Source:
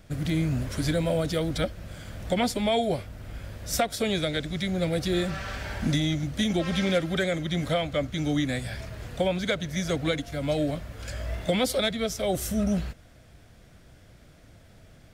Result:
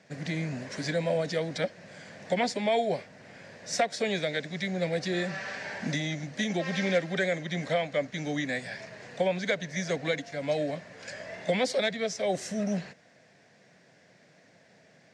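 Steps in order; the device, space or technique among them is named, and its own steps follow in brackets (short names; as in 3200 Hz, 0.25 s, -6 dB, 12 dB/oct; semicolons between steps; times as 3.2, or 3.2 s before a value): television speaker (speaker cabinet 180–6900 Hz, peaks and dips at 230 Hz -5 dB, 320 Hz -8 dB, 1300 Hz -9 dB, 1800 Hz +6 dB, 3300 Hz -7 dB)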